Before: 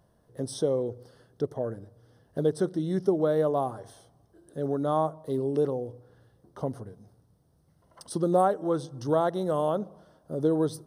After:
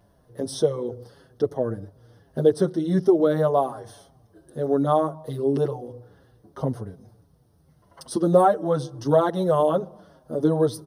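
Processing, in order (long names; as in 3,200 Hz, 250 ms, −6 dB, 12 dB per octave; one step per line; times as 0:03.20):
parametric band 7,700 Hz −7 dB 0.26 octaves
barber-pole flanger 6.4 ms −2.8 Hz
level +8.5 dB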